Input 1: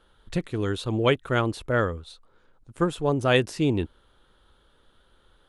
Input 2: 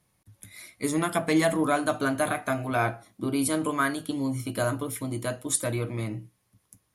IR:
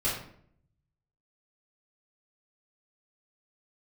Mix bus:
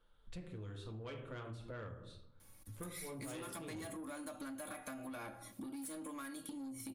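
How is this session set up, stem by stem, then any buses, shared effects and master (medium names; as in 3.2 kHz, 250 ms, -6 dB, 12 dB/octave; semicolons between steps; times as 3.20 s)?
-17.5 dB, 0.00 s, send -8.5 dB, none
+0.5 dB, 2.40 s, send -23 dB, comb 3.6 ms, depth 74%; compression 3:1, threshold -36 dBFS, peak gain reduction 15 dB; treble shelf 6.4 kHz +9 dB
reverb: on, RT60 0.60 s, pre-delay 3 ms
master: saturation -31 dBFS, distortion -12 dB; compression 6:1, threshold -45 dBFS, peak gain reduction 11.5 dB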